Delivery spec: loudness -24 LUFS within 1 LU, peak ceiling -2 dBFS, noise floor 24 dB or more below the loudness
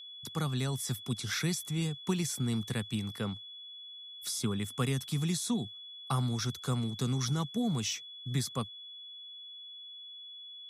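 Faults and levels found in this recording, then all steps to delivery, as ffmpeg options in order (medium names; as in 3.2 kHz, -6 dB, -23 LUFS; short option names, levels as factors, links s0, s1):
steady tone 3.4 kHz; tone level -45 dBFS; loudness -33.5 LUFS; peak level -18.5 dBFS; loudness target -24.0 LUFS
-> -af "bandreject=f=3400:w=30"
-af "volume=2.99"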